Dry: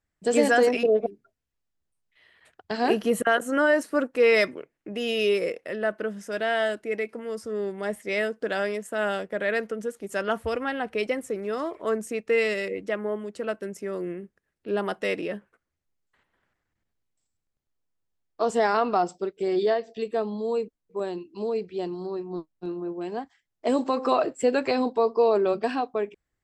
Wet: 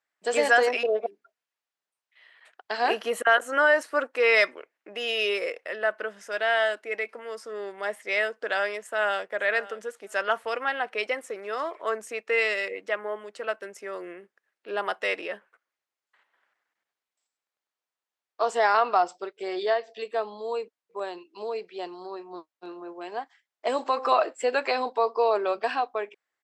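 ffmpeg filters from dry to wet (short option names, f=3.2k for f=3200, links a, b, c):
-filter_complex "[0:a]asplit=2[a][b];[b]afade=t=in:st=8.82:d=0.01,afade=t=out:st=9.32:d=0.01,aecho=0:1:560|1120:0.133352|0.0200028[c];[a][c]amix=inputs=2:normalize=0,highpass=730,highshelf=f=6.9k:g=-12,volume=4.5dB"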